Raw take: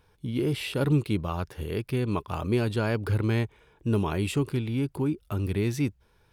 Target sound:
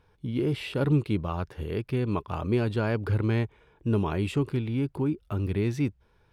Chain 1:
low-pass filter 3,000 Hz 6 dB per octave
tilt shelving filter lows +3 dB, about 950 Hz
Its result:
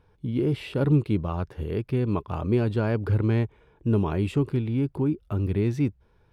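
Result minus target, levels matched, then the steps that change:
1,000 Hz band −2.5 dB
remove: tilt shelving filter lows +3 dB, about 950 Hz

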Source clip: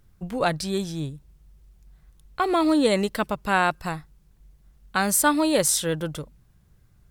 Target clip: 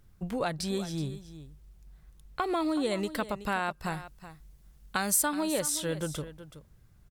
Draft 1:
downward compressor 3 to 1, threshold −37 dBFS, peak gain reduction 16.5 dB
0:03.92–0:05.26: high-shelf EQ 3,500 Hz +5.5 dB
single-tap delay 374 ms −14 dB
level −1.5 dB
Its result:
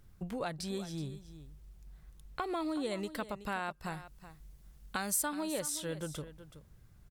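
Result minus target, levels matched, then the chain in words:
downward compressor: peak gain reduction +6.5 dB
downward compressor 3 to 1, threshold −27.5 dBFS, peak gain reduction 10 dB
0:03.92–0:05.26: high-shelf EQ 3,500 Hz +5.5 dB
single-tap delay 374 ms −14 dB
level −1.5 dB

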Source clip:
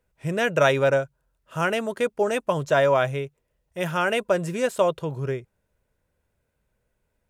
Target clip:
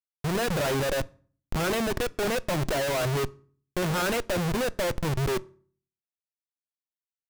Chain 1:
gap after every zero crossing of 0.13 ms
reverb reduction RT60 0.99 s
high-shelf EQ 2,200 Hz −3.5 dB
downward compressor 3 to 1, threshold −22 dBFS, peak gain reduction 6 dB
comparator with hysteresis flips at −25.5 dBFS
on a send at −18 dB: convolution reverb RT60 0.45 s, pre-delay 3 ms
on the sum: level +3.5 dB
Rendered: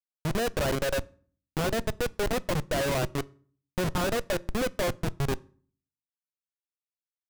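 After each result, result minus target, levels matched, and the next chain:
gap after every zero crossing: distortion +12 dB; comparator with hysteresis: distortion +4 dB
gap after every zero crossing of 0.049 ms
reverb reduction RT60 0.99 s
high-shelf EQ 2,200 Hz −3.5 dB
downward compressor 3 to 1, threshold −22 dBFS, peak gain reduction 6 dB
comparator with hysteresis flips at −25.5 dBFS
on a send at −18 dB: convolution reverb RT60 0.45 s, pre-delay 3 ms
on the sum: level +3.5 dB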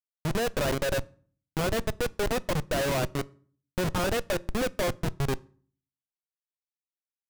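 comparator with hysteresis: distortion +5 dB
gap after every zero crossing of 0.049 ms
reverb reduction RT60 0.99 s
high-shelf EQ 2,200 Hz −3.5 dB
downward compressor 3 to 1, threshold −22 dBFS, peak gain reduction 6 dB
comparator with hysteresis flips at −35.5 dBFS
on a send at −18 dB: convolution reverb RT60 0.45 s, pre-delay 3 ms
on the sum: level +3.5 dB

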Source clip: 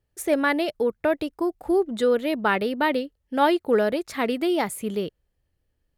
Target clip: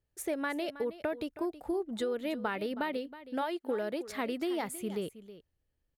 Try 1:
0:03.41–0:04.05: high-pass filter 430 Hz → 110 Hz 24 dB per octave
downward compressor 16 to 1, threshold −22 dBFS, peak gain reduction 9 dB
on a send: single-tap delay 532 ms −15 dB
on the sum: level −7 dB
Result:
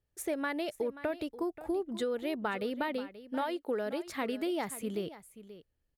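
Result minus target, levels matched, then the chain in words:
echo 212 ms late
0:03.41–0:04.05: high-pass filter 430 Hz → 110 Hz 24 dB per octave
downward compressor 16 to 1, threshold −22 dBFS, peak gain reduction 9 dB
on a send: single-tap delay 320 ms −15 dB
on the sum: level −7 dB

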